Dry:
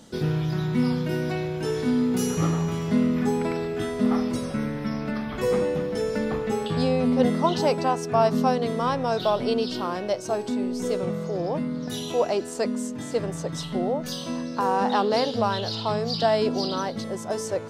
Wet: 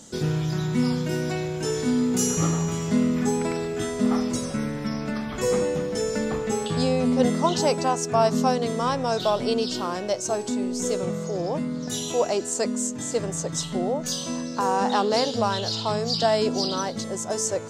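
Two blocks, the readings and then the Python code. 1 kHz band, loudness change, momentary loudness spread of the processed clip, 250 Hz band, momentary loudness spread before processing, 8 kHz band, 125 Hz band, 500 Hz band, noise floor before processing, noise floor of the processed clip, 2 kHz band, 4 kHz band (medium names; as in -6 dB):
0.0 dB, +0.5 dB, 7 LU, 0.0 dB, 7 LU, +10.0 dB, 0.0 dB, 0.0 dB, -34 dBFS, -33 dBFS, +0.5 dB, +3.0 dB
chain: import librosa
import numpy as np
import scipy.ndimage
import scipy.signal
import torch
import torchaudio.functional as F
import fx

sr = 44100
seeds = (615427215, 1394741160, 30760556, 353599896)

y = fx.peak_eq(x, sr, hz=7100.0, db=14.0, octaves=0.66)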